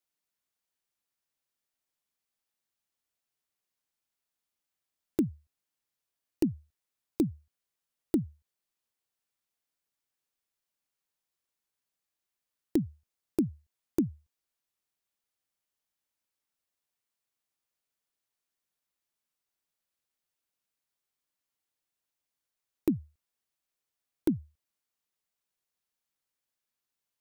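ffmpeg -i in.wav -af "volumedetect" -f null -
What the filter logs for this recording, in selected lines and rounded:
mean_volume: -40.8 dB
max_volume: -14.5 dB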